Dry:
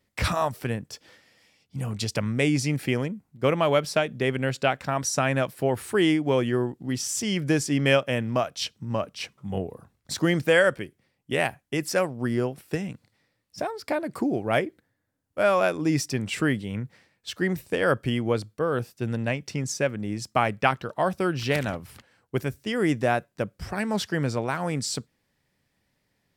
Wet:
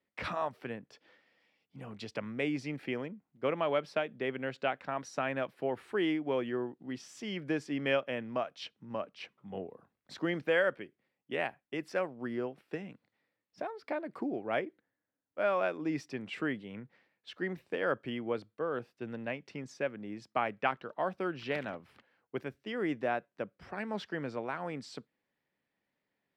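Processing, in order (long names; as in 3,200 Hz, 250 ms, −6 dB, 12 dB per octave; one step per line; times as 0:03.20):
three-way crossover with the lows and the highs turned down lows −16 dB, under 190 Hz, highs −21 dB, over 3,800 Hz
level −8.5 dB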